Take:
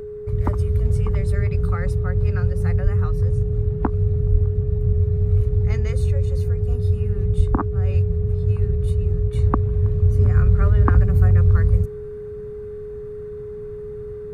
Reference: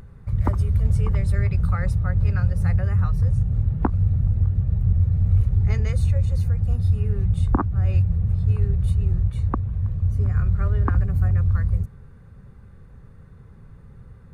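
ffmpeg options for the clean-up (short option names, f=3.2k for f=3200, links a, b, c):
-filter_complex "[0:a]bandreject=f=420:w=30,asplit=3[a][b][c];[a]afade=t=out:st=2.83:d=0.02[d];[b]highpass=f=140:w=0.5412,highpass=f=140:w=1.3066,afade=t=in:st=2.83:d=0.02,afade=t=out:st=2.95:d=0.02[e];[c]afade=t=in:st=2.95:d=0.02[f];[d][e][f]amix=inputs=3:normalize=0,asplit=3[g][h][i];[g]afade=t=out:st=4.31:d=0.02[j];[h]highpass=f=140:w=0.5412,highpass=f=140:w=1.3066,afade=t=in:st=4.31:d=0.02,afade=t=out:st=4.43:d=0.02[k];[i]afade=t=in:st=4.43:d=0.02[l];[j][k][l]amix=inputs=3:normalize=0,asplit=3[m][n][o];[m]afade=t=out:st=7.36:d=0.02[p];[n]highpass=f=140:w=0.5412,highpass=f=140:w=1.3066,afade=t=in:st=7.36:d=0.02,afade=t=out:st=7.48:d=0.02[q];[o]afade=t=in:st=7.48:d=0.02[r];[p][q][r]amix=inputs=3:normalize=0,asetnsamples=n=441:p=0,asendcmd='9.33 volume volume -5dB',volume=0dB"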